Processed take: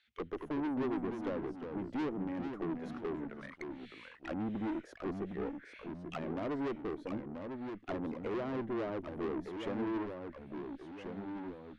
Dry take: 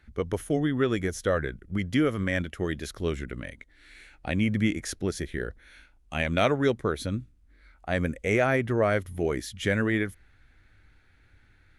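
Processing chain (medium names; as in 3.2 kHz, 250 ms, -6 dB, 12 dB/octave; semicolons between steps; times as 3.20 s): auto-wah 320–3600 Hz, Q 3, down, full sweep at -25.5 dBFS; valve stage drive 37 dB, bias 0.4; ever faster or slower copies 202 ms, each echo -2 st, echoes 2, each echo -6 dB; trim +3.5 dB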